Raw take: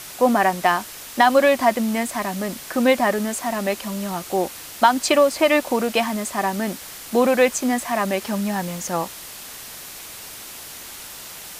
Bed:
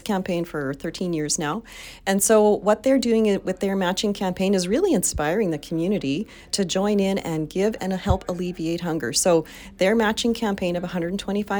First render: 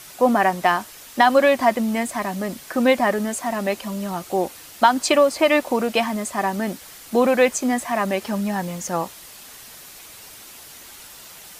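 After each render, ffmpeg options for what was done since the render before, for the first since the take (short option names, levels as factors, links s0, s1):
-af "afftdn=nr=6:nf=-38"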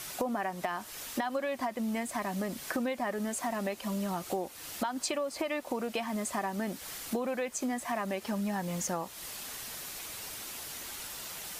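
-af "alimiter=limit=0.299:level=0:latency=1:release=201,acompressor=threshold=0.0282:ratio=6"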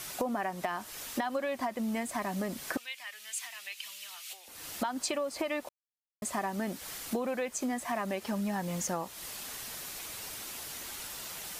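-filter_complex "[0:a]asettb=1/sr,asplit=3[s0][s1][s2];[s0]atrim=end=2.774[s3];[s1]atrim=start=2.77:end=4.48,asetpts=PTS-STARTPTS,afade=t=in:d=0.004:c=qsin,afade=t=out:st=1.706:d=0.004:c=qsin,highpass=f=2700:t=q:w=2[s4];[s2]atrim=start=4.476[s5];[s3][s4]acrossfade=d=0.004:c1=hsin:c2=qsin[s6];[s6][s5]acrossfade=d=0.004:c1=qsin:c2=hsin,asplit=3[s7][s8][s9];[s7]atrim=end=5.69,asetpts=PTS-STARTPTS,afade=t=out:st=5.686:d=0.004:c=hsin[s10];[s8]atrim=start=5.69:end=6.22,asetpts=PTS-STARTPTS,volume=0[s11];[s9]atrim=start=6.22,asetpts=PTS-STARTPTS,afade=t=in:d=0.004:c=hsin[s12];[s10][s11][s12]concat=n=3:v=0:a=1"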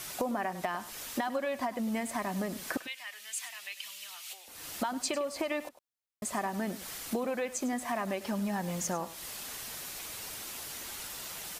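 -af "aecho=1:1:101:0.178"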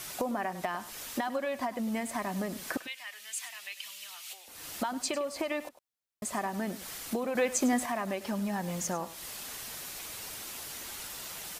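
-filter_complex "[0:a]asettb=1/sr,asplit=3[s0][s1][s2];[s0]atrim=end=7.354[s3];[s1]atrim=start=7.35:end=7.86,asetpts=PTS-STARTPTS,afade=t=in:d=0.004:c=qsin,afade=t=out:st=0.506:d=0.004:c=qsin,acontrast=54[s4];[s2]atrim=start=7.856[s5];[s3][s4]acrossfade=d=0.004:c1=hsin:c2=qsin[s6];[s6][s5]acrossfade=d=0.004:c1=qsin:c2=hsin"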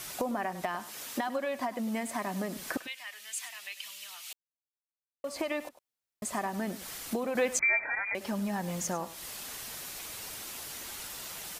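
-filter_complex "[0:a]asettb=1/sr,asplit=3[s0][s1][s2];[s0]atrim=end=0.794[s3];[s1]atrim=start=0.79:end=2.57,asetpts=PTS-STARTPTS,afade=t=in:d=0.004:c=qsin,afade=t=out:st=1.776:d=0.004:c=qsin,highpass=130[s4];[s2]atrim=start=2.566[s5];[s3][s4]acrossfade=d=0.004:c1=hsin:c2=qsin[s6];[s6][s5]acrossfade=d=0.004:c1=qsin:c2=hsin,asettb=1/sr,asplit=3[s7][s8][s9];[s7]atrim=end=7.594[s10];[s8]atrim=start=7.59:end=8.15,asetpts=PTS-STARTPTS,afade=t=in:d=0.004:c=qsin,afade=t=out:st=0.556:d=0.004:c=qsin,lowpass=f=2200:t=q:w=0.5098,lowpass=f=2200:t=q:w=0.6013,lowpass=f=2200:t=q:w=0.9,lowpass=f=2200:t=q:w=2.563,afreqshift=-2600[s11];[s9]atrim=start=8.146[s12];[s10][s11]acrossfade=d=0.004:c1=hsin:c2=qsin[s13];[s13][s12]acrossfade=d=0.004:c1=qsin:c2=hsin,asplit=3[s14][s15][s16];[s14]atrim=end=4.33,asetpts=PTS-STARTPTS,afade=t=out:st=4.326:d=0.004:c=hsin[s17];[s15]atrim=start=4.33:end=5.24,asetpts=PTS-STARTPTS,volume=0[s18];[s16]atrim=start=5.24,asetpts=PTS-STARTPTS,afade=t=in:d=0.004:c=hsin[s19];[s17][s18][s19]concat=n=3:v=0:a=1"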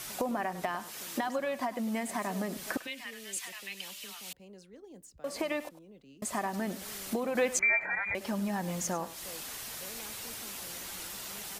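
-filter_complex "[1:a]volume=0.0266[s0];[0:a][s0]amix=inputs=2:normalize=0"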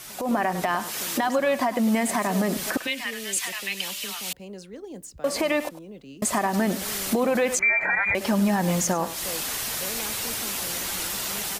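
-af "alimiter=level_in=1.26:limit=0.0631:level=0:latency=1:release=78,volume=0.794,dynaudnorm=f=170:g=3:m=3.98"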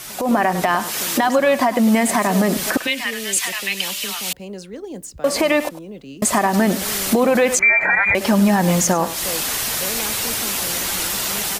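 -af "volume=2.24"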